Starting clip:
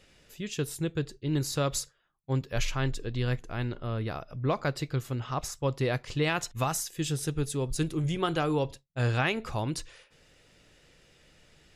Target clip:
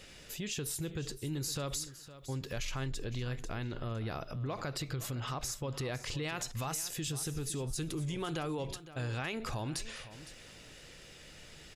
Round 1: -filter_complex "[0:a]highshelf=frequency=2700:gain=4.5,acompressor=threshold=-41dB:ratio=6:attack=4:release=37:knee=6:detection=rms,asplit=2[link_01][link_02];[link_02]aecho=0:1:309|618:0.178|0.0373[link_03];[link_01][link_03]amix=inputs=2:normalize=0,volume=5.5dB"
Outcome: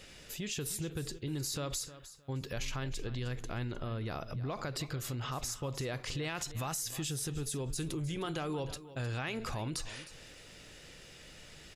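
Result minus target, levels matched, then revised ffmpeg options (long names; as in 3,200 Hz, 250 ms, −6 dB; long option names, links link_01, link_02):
echo 201 ms early
-filter_complex "[0:a]highshelf=frequency=2700:gain=4.5,acompressor=threshold=-41dB:ratio=6:attack=4:release=37:knee=6:detection=rms,asplit=2[link_01][link_02];[link_02]aecho=0:1:510|1020:0.178|0.0373[link_03];[link_01][link_03]amix=inputs=2:normalize=0,volume=5.5dB"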